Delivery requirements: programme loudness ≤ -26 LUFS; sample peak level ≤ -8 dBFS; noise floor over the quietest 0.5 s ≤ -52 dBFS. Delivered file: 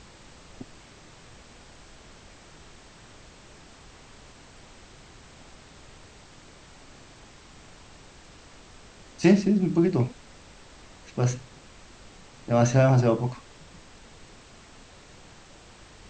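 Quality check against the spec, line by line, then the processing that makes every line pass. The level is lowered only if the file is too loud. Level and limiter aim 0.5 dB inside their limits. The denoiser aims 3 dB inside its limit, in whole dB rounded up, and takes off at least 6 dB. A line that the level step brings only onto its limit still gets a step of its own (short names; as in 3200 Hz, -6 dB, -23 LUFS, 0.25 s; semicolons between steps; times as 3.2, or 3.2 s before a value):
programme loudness -23.5 LUFS: fail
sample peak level -6.5 dBFS: fail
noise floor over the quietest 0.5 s -50 dBFS: fail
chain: gain -3 dB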